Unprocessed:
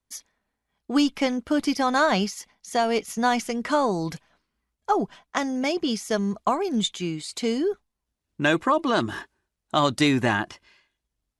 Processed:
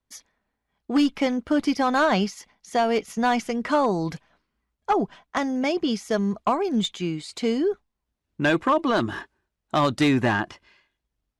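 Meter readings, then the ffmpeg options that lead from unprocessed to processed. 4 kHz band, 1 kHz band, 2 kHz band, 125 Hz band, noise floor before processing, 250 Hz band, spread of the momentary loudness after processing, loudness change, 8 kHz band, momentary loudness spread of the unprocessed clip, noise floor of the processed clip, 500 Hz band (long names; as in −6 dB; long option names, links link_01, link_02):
−2.0 dB, +0.5 dB, −0.5 dB, +1.5 dB, −83 dBFS, +1.5 dB, 9 LU, +0.5 dB, −5.0 dB, 11 LU, −82 dBFS, +1.0 dB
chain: -af "volume=15.5dB,asoftclip=hard,volume=-15.5dB,highshelf=frequency=5600:gain=-10.5,volume=1.5dB"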